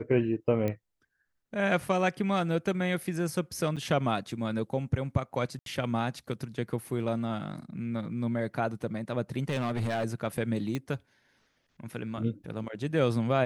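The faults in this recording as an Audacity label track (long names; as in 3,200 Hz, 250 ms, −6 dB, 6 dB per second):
0.680000	0.680000	click −19 dBFS
3.760000	3.770000	drop-out 6.7 ms
5.590000	5.660000	drop-out 72 ms
9.490000	10.050000	clipping −26 dBFS
10.750000	10.750000	click −19 dBFS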